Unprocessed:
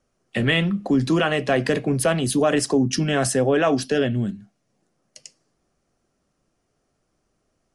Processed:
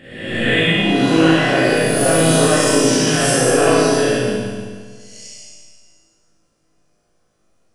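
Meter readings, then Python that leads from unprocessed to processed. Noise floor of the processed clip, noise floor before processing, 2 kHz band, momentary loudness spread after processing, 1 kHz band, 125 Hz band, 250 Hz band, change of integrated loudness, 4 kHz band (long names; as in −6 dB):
−63 dBFS, −73 dBFS, +8.0 dB, 9 LU, +7.0 dB, +4.0 dB, +5.5 dB, +6.5 dB, +9.0 dB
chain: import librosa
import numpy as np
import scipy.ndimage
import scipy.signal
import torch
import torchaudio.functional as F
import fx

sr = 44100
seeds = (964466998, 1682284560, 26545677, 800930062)

y = fx.spec_swells(x, sr, rise_s=1.08)
y = fx.comb_fb(y, sr, f0_hz=54.0, decay_s=0.77, harmonics='all', damping=0.0, mix_pct=90)
y = y + 10.0 ** (-9.0 / 20.0) * np.pad(y, (int(145 * sr / 1000.0), 0))[:len(y)]
y = fx.rev_schroeder(y, sr, rt60_s=1.7, comb_ms=31, drr_db=-8.0)
y = y * librosa.db_to_amplitude(5.0)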